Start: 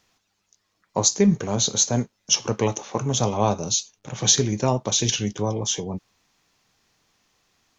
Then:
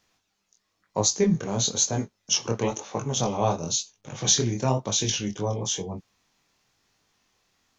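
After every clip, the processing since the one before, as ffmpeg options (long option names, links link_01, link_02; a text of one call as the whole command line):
ffmpeg -i in.wav -af "flanger=delay=19:depth=6.9:speed=1" out.wav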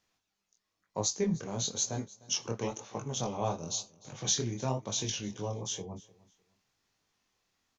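ffmpeg -i in.wav -af "aecho=1:1:303|606:0.0794|0.0191,volume=-8.5dB" out.wav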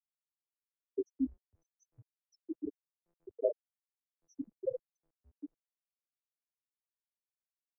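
ffmpeg -i in.wav -af "afftfilt=real='re*gte(hypot(re,im),0.158)':imag='im*gte(hypot(re,im),0.158)':win_size=1024:overlap=0.75,highpass=frequency=510:width_type=q:width=0.5412,highpass=frequency=510:width_type=q:width=1.307,lowpass=frequency=2800:width_type=q:width=0.5176,lowpass=frequency=2800:width_type=q:width=0.7071,lowpass=frequency=2800:width_type=q:width=1.932,afreqshift=-140,volume=8.5dB" out.wav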